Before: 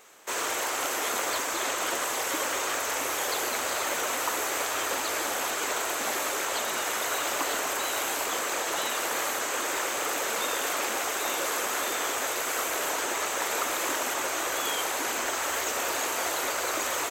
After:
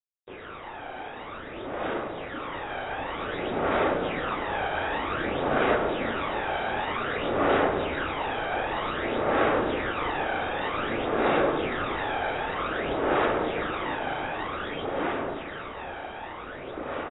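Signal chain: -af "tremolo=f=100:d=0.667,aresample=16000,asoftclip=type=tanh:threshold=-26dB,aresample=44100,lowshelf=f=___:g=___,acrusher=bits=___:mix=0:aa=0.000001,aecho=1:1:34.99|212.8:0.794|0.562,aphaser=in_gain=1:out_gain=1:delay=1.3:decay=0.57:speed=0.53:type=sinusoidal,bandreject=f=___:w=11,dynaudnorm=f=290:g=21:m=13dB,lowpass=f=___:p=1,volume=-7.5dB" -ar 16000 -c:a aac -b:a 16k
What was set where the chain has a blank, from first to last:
490, 8, 5, 990, 1500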